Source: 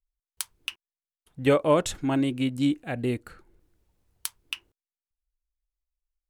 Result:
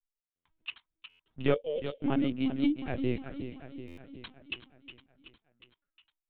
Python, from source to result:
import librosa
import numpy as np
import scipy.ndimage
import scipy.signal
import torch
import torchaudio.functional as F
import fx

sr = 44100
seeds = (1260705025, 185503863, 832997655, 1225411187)

y = fx.dynamic_eq(x, sr, hz=1700.0, q=4.4, threshold_db=-48.0, ratio=4.0, max_db=-3)
y = fx.leveller(y, sr, passes=1)
y = fx.double_bandpass(y, sr, hz=1200.0, octaves=2.7, at=(1.53, 2.02), fade=0.02)
y = fx.echo_feedback(y, sr, ms=367, feedback_pct=59, wet_db=-11)
y = fx.lpc_vocoder(y, sr, seeds[0], excitation='pitch_kept', order=16)
y = fx.buffer_glitch(y, sr, at_s=(0.35, 1.09, 3.87), block=512, repeats=8)
y = y * 10.0 ** (-7.0 / 20.0)